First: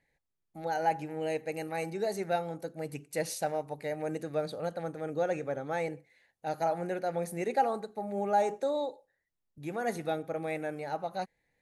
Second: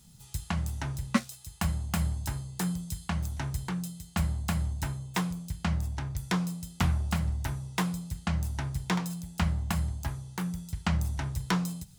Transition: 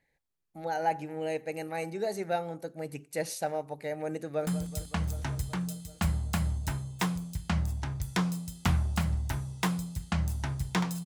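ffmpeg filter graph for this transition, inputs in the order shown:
-filter_complex "[0:a]apad=whole_dur=11.05,atrim=end=11.05,atrim=end=4.472[a];[1:a]atrim=start=2.618:end=9.2[b];[a][b]acrossfade=d=0.004:c1=hsin:c2=hsin,asplit=2[c][d];[d]afade=t=in:st=4.19:d=0.01,afade=t=out:st=4.47:d=0.01,aecho=0:1:190|380|570|760|950|1140|1330|1520|1710|1900|2090|2280:0.211349|0.169079|0.135263|0.108211|0.0865685|0.0692548|0.0554038|0.0443231|0.0354585|0.0283668|0.0226934|0.0181547[e];[c][e]amix=inputs=2:normalize=0"

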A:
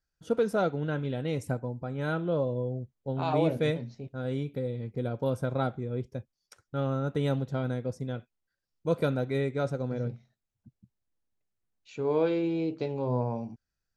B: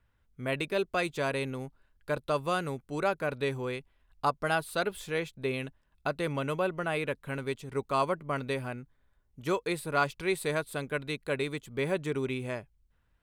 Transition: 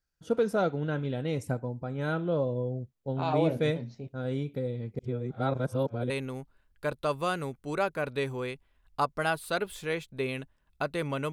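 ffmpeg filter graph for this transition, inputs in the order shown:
-filter_complex "[0:a]apad=whole_dur=11.32,atrim=end=11.32,asplit=2[a][b];[a]atrim=end=4.992[c];[b]atrim=start=4.988:end=6.102,asetpts=PTS-STARTPTS,areverse[d];[1:a]atrim=start=1.348:end=6.57[e];[c][d]acrossfade=d=0.004:c1=hsin:c2=hsin[f];[f][e]acrossfade=d=0.004:c1=hsin:c2=hsin"

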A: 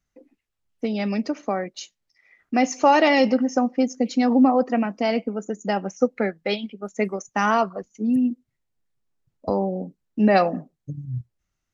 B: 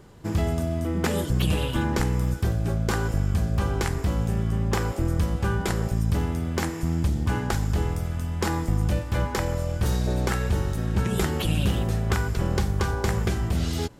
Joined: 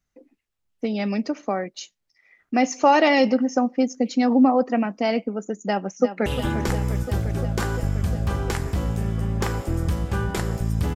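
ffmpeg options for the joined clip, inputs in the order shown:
-filter_complex "[0:a]apad=whole_dur=10.95,atrim=end=10.95,atrim=end=6.262[a];[1:a]atrim=start=1.568:end=6.26[b];[a][b]acrossfade=d=0.004:c1=hsin:c2=hsin,asplit=2[c][d];[d]afade=t=in:st=5.62:d=0.01,afade=t=out:st=6.26:d=0.01,aecho=0:1:350|700|1050|1400|1750|2100|2450|2800|3150|3500|3850|4200:0.298538|0.238831|0.191064|0.152852|0.122281|0.097825|0.07826|0.062608|0.0500864|0.0400691|0.0320553|0.0256442[e];[c][e]amix=inputs=2:normalize=0"

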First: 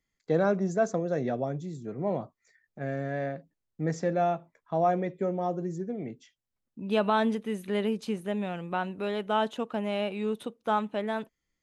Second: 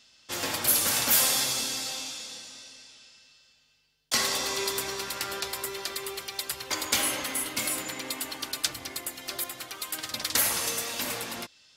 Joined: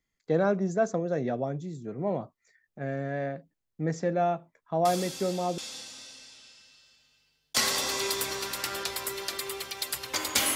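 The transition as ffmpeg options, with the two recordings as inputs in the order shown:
-filter_complex "[1:a]asplit=2[a][b];[0:a]apad=whole_dur=10.55,atrim=end=10.55,atrim=end=5.582[c];[b]atrim=start=2.148:end=7.12[d];[a]atrim=start=1.42:end=2.15,asetpts=PTS-STARTPTS,volume=-9dB,afade=t=in:d=0.004:c=hsin,afade=t=out:st=0.726:d=0.004:c=hsin,adelay=213885S[e];[c][d]acrossfade=d=0.004:c1=hsin:c2=hsin[f];[f][e]amix=inputs=2:normalize=0"

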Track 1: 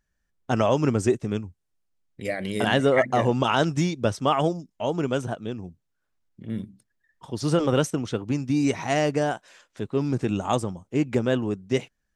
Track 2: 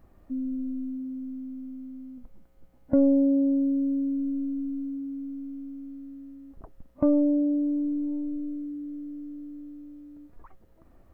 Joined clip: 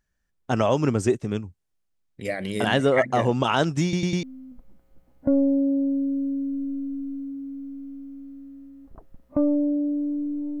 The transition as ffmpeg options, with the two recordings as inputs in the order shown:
-filter_complex "[0:a]apad=whole_dur=10.6,atrim=end=10.6,asplit=4[a][b][c][d];[a]atrim=end=3.932[e];[b]atrim=start=3.828:end=3.932[f];[c]atrim=start=3.828:end=3.932[g];[d]atrim=start=3.828:end=3.932[h];[1:a]atrim=start=1.888:end=8.26[i];[e][f]acrossfade=d=0.004:c1=hsin:c2=hsin[j];[j][g]acrossfade=d=0.004:c1=hsin:c2=hsin[k];[k][h]acrossfade=d=0.004:c1=hsin:c2=hsin[l];[l][i]acrossfade=d=0.004:c1=hsin:c2=hsin"

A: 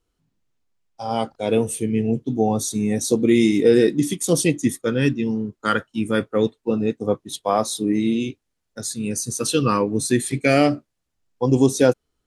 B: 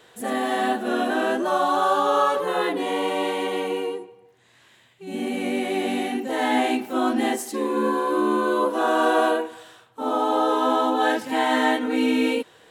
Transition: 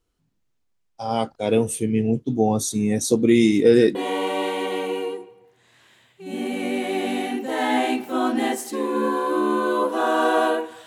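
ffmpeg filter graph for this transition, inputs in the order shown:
-filter_complex "[0:a]apad=whole_dur=10.86,atrim=end=10.86,atrim=end=3.952[a];[1:a]atrim=start=2.758:end=9.67[b];[a][b]acrossfade=d=0.004:c1=hsin:c2=hsin"

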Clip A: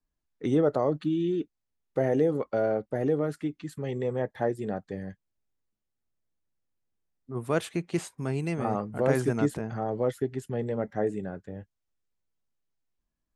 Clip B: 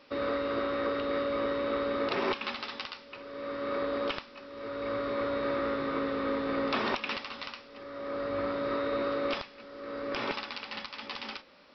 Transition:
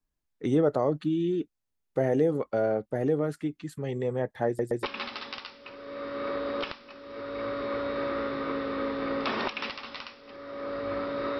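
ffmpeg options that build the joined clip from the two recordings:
-filter_complex "[0:a]apad=whole_dur=11.39,atrim=end=11.39,asplit=3[a][b][c];[a]atrim=end=4.592[d];[b]atrim=start=4.468:end=4.592[e];[c]atrim=start=4.468:end=4.592[f];[1:a]atrim=start=2.298:end=8.86[g];[d][e]acrossfade=d=0.004:c1=hsin:c2=hsin[h];[h][f]acrossfade=d=0.004:c1=hsin:c2=hsin[i];[i][g]acrossfade=d=0.004:c1=hsin:c2=hsin"

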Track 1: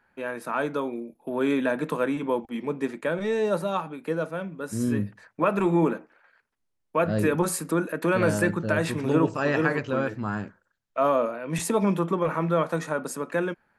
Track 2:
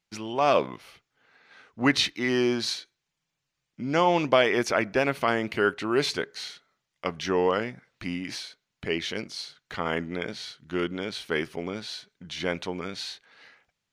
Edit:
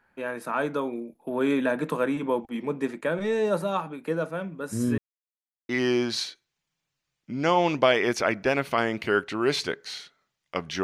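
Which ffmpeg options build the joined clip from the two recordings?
-filter_complex "[0:a]apad=whole_dur=10.83,atrim=end=10.83,asplit=2[a][b];[a]atrim=end=4.98,asetpts=PTS-STARTPTS,afade=t=out:st=4.976:d=0.004:c=hsin[c];[b]atrim=start=4.98:end=5.69,asetpts=PTS-STARTPTS,volume=0[d];[1:a]atrim=start=2.19:end=7.33,asetpts=PTS-STARTPTS,afade=t=in:d=0.004:c=hsin[e];[c][d][e]concat=n=3:v=0:a=1"

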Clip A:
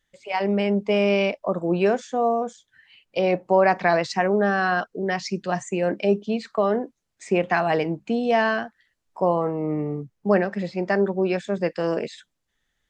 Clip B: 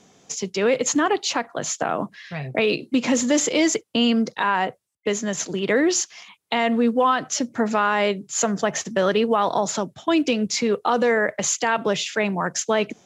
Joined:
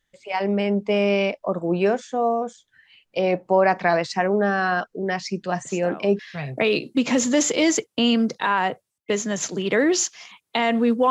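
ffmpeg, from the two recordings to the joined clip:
-filter_complex "[1:a]asplit=2[a][b];[0:a]apad=whole_dur=11.1,atrim=end=11.1,atrim=end=6.192[c];[b]atrim=start=2.158:end=7.07[d];[a]atrim=start=1.62:end=2.16,asetpts=PTS-STARTPTS,volume=-13.5dB,afade=t=in:d=0.004:c=hsin,afade=t=out:st=0.536:d=0.004:c=hsin,adelay=249165S[e];[c][d]acrossfade=d=0.004:c1=hsin:c2=hsin[f];[f][e]amix=inputs=2:normalize=0"

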